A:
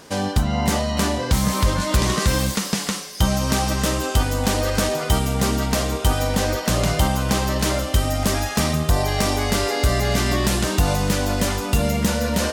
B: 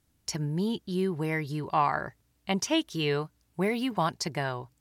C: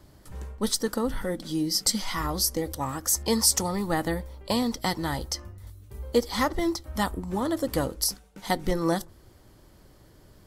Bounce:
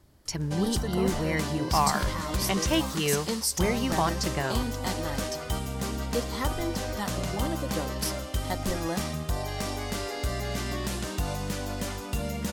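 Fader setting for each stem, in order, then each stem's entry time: -11.5 dB, +0.5 dB, -7.0 dB; 0.40 s, 0.00 s, 0.00 s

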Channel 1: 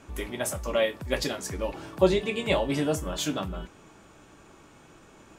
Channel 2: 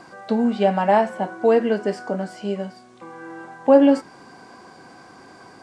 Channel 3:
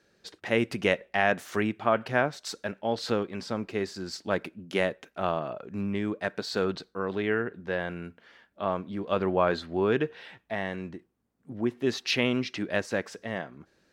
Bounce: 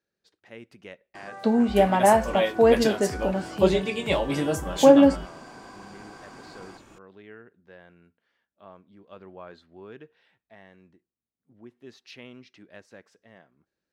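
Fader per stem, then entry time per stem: +0.5 dB, -1.0 dB, -19.0 dB; 1.60 s, 1.15 s, 0.00 s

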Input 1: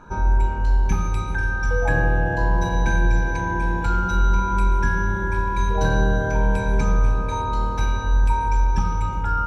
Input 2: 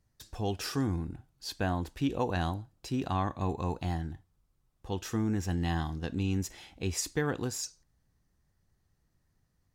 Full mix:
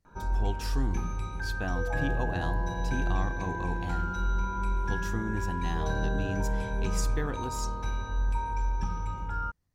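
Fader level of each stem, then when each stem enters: -10.5 dB, -4.0 dB; 0.05 s, 0.00 s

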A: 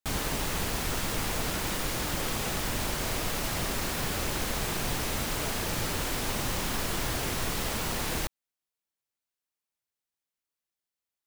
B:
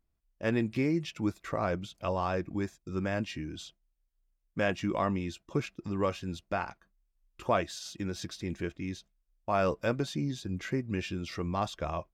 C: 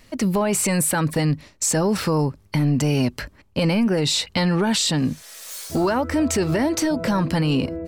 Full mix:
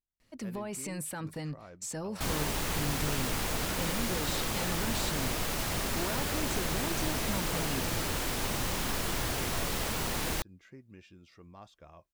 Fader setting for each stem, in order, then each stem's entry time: -1.5 dB, -19.5 dB, -17.5 dB; 2.15 s, 0.00 s, 0.20 s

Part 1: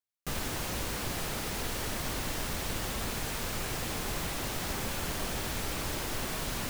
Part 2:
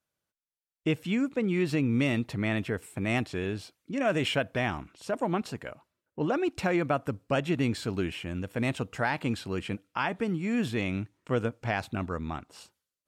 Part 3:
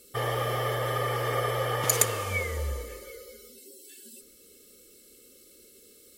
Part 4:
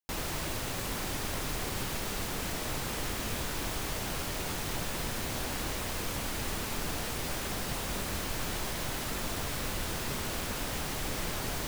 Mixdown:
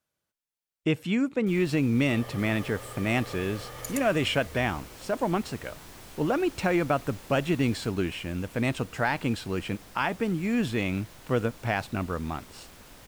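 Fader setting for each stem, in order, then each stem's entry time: -15.5 dB, +2.0 dB, -14.0 dB, -15.0 dB; 1.20 s, 0.00 s, 1.95 s, 2.30 s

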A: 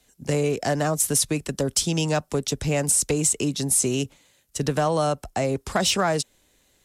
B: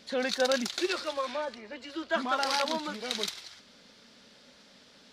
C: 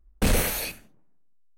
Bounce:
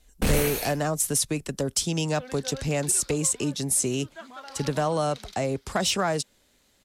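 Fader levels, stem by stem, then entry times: -3.0 dB, -13.5 dB, -2.0 dB; 0.00 s, 2.05 s, 0.00 s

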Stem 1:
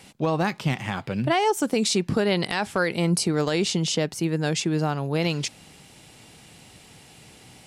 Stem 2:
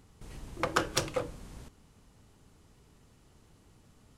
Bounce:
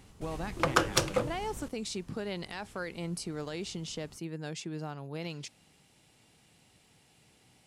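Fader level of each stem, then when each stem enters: -14.5 dB, +3.0 dB; 0.00 s, 0.00 s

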